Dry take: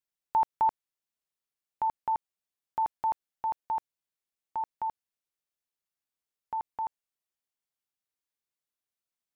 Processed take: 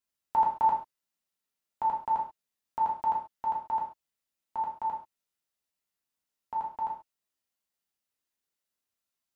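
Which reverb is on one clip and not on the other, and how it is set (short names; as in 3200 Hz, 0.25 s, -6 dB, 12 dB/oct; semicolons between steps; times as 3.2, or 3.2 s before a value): non-linear reverb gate 0.16 s falling, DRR -3 dB; gain -1.5 dB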